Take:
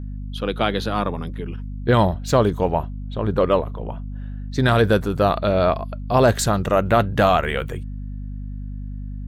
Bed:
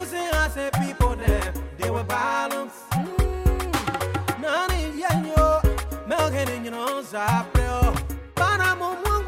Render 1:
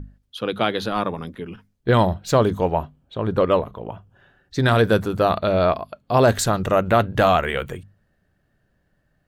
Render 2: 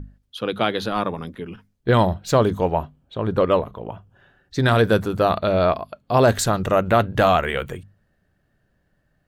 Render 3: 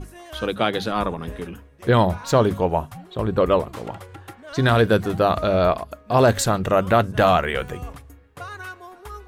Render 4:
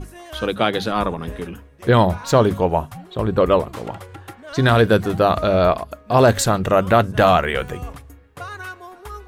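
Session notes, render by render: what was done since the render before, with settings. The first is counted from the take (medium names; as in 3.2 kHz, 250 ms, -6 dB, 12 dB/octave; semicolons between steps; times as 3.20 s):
hum notches 50/100/150/200/250 Hz
no audible change
add bed -15 dB
trim +2.5 dB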